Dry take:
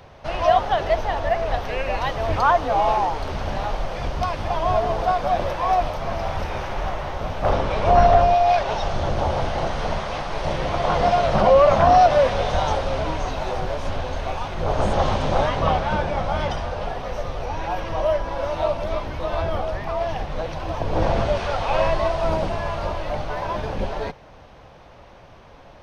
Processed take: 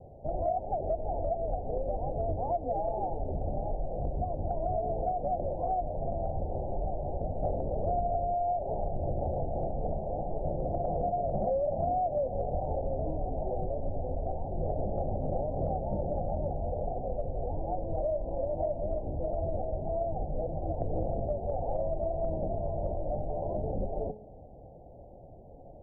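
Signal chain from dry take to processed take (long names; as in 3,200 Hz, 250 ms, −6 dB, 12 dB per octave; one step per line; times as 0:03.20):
Butterworth low-pass 770 Hz 72 dB per octave
hum removal 212.6 Hz, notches 33
downward compressor, threshold −25 dBFS, peak gain reduction 14 dB
level −2.5 dB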